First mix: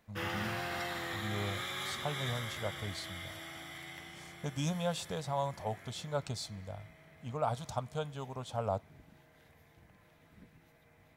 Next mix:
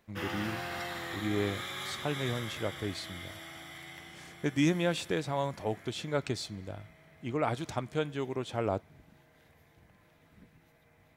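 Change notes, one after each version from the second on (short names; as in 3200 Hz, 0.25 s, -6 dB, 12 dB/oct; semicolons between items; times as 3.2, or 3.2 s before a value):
speech: remove fixed phaser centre 820 Hz, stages 4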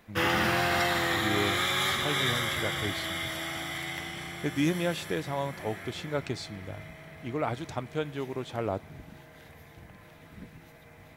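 speech: add high shelf 10000 Hz -9 dB; background +11.5 dB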